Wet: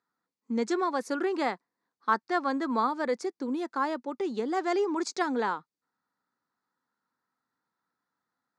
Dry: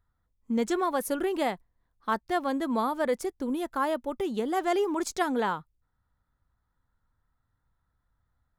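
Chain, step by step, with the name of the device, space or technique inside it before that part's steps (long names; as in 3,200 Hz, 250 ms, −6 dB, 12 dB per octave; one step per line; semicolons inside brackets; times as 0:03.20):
0:01.04–0:02.87: dynamic equaliser 1,300 Hz, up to +5 dB, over −44 dBFS, Q 1.5
television speaker (loudspeaker in its box 220–7,100 Hz, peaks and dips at 620 Hz −6 dB, 3,100 Hz −8 dB, 4,600 Hz +5 dB)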